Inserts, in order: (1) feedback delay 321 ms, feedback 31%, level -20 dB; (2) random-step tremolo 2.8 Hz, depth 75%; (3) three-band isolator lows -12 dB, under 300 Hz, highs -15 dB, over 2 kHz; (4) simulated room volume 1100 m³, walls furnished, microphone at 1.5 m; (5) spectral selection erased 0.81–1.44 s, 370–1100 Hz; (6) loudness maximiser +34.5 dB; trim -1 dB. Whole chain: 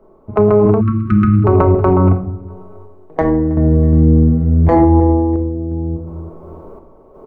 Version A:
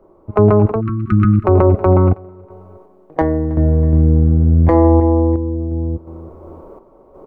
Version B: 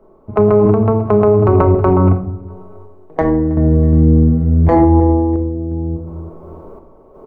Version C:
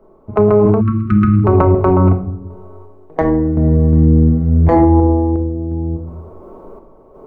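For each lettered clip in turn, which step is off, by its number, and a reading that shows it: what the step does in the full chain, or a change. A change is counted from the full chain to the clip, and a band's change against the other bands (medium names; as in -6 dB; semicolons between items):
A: 4, momentary loudness spread change -4 LU; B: 5, 500 Hz band +2.0 dB; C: 1, momentary loudness spread change -2 LU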